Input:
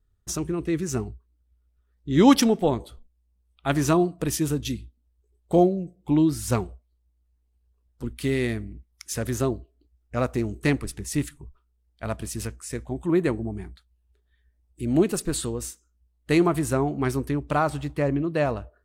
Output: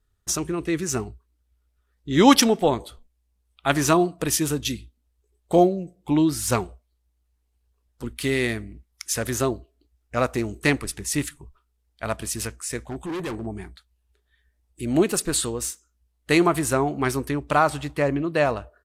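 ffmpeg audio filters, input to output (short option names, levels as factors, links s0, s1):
-filter_complex "[0:a]lowshelf=f=450:g=-9,asplit=3[s0][s1][s2];[s0]afade=t=out:st=12.87:d=0.02[s3];[s1]asoftclip=type=hard:threshold=0.02,afade=t=in:st=12.87:d=0.02,afade=t=out:st=13.45:d=0.02[s4];[s2]afade=t=in:st=13.45:d=0.02[s5];[s3][s4][s5]amix=inputs=3:normalize=0,aresample=32000,aresample=44100,volume=2.11"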